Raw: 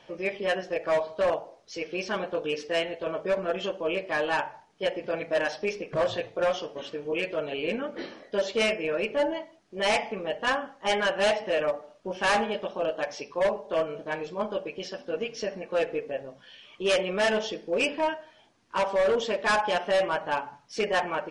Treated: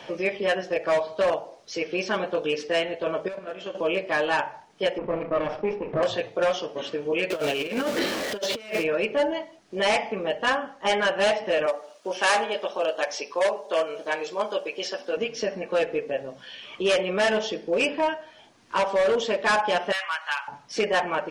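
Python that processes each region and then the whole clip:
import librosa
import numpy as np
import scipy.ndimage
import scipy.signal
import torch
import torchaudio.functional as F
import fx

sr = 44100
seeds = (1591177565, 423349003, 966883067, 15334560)

y = fx.chain(x, sr, fx.level_steps(step_db=10),
    fx.comb_fb(f0_hz=54.0, decay_s=1.3, harmonics='all', damping=0.0, mix_pct=70), at=(3.28, 3.75))
y = fx.chain(y, sr, fx.lower_of_two(delay_ms=0.37),
    fx.lowpass(hz=1200.0, slope=12),
    fx.sustainer(db_per_s=110.0), at=(4.98, 6.03))
y = fx.chain(y, sr, fx.zero_step(step_db=-36.5),
    fx.peak_eq(hz=4600.0, db=5.0, octaves=2.3),
    fx.over_compress(threshold_db=-31.0, ratio=-0.5), at=(7.3, 8.84))
y = fx.chain(y, sr, fx.highpass(hz=380.0, slope=12),
    fx.high_shelf(hz=5400.0, db=10.0), at=(11.66, 15.17))
y = fx.chain(y, sr, fx.highpass(hz=1200.0, slope=24),
    fx.clip_hard(threshold_db=-23.5),
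    fx.band_squash(depth_pct=100), at=(19.92, 20.48))
y = fx.low_shelf(y, sr, hz=71.0, db=-7.0)
y = fx.band_squash(y, sr, depth_pct=40)
y = F.gain(torch.from_numpy(y), 3.0).numpy()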